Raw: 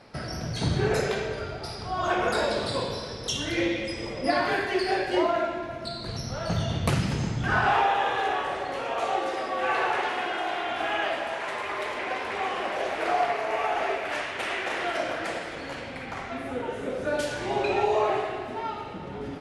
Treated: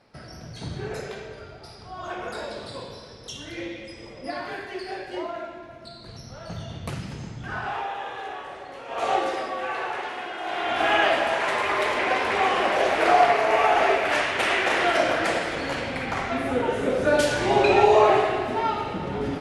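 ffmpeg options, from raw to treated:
ffmpeg -i in.wav -af "volume=16dB,afade=type=in:start_time=8.87:duration=0.25:silence=0.237137,afade=type=out:start_time=9.12:duration=0.57:silence=0.375837,afade=type=in:start_time=10.39:duration=0.53:silence=0.266073" out.wav

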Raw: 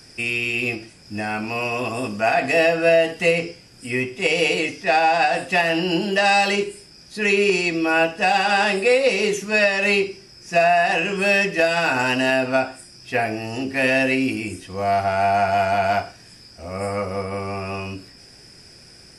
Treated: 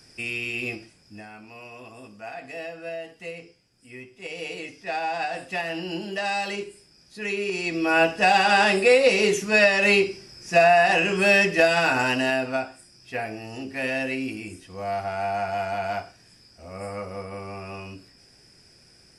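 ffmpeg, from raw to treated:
ffmpeg -i in.wav -af "volume=12dB,afade=type=out:start_time=0.76:duration=0.54:silence=0.251189,afade=type=in:start_time=4.1:duration=1.06:silence=0.375837,afade=type=in:start_time=7.51:duration=0.58:silence=0.316228,afade=type=out:start_time=11.65:duration=1.03:silence=0.375837" out.wav

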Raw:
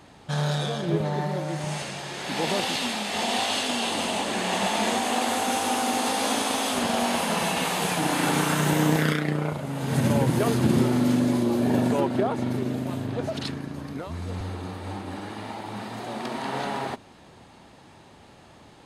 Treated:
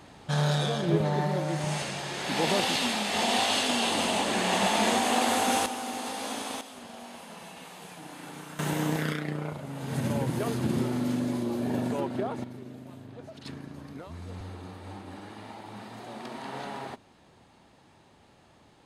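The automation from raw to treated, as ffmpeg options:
ffmpeg -i in.wav -af "asetnsamples=nb_out_samples=441:pad=0,asendcmd='5.66 volume volume -9.5dB;6.61 volume volume -19.5dB;8.59 volume volume -7dB;12.44 volume volume -15.5dB;13.46 volume volume -8dB',volume=0dB" out.wav

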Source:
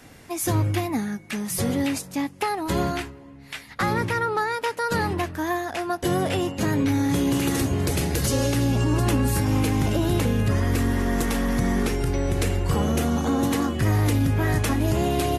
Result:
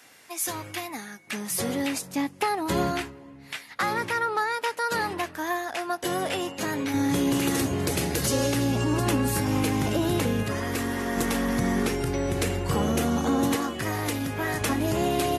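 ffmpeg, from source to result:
ffmpeg -i in.wav -af "asetnsamples=nb_out_samples=441:pad=0,asendcmd='1.27 highpass f 360;2.02 highpass f 140;3.56 highpass f 570;6.94 highpass f 180;10.43 highpass f 370;11.17 highpass f 140;13.56 highpass f 480;14.61 highpass f 210',highpass=frequency=1300:poles=1" out.wav

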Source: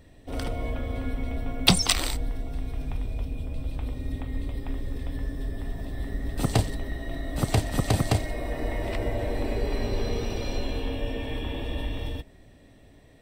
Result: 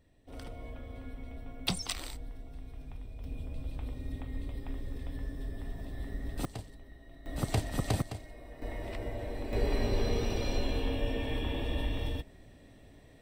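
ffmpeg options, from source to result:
ffmpeg -i in.wav -af "asetnsamples=nb_out_samples=441:pad=0,asendcmd='3.24 volume volume -7dB;6.45 volume volume -19.5dB;7.26 volume volume -7dB;8.02 volume volume -17.5dB;8.62 volume volume -9.5dB;9.53 volume volume -2dB',volume=-13.5dB" out.wav

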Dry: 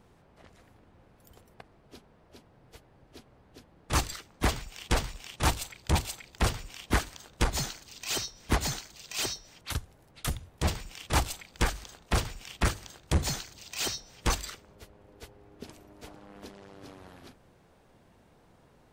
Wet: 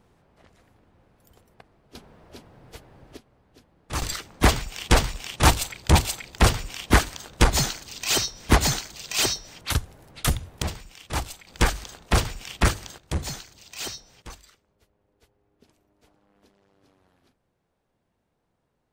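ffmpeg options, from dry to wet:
ffmpeg -i in.wav -af "asetnsamples=nb_out_samples=441:pad=0,asendcmd='1.95 volume volume 8.5dB;3.17 volume volume -2.5dB;4.02 volume volume 9dB;10.62 volume volume -2dB;11.47 volume volume 6.5dB;12.98 volume volume -1.5dB;14.22 volume volume -14.5dB',volume=-1dB" out.wav

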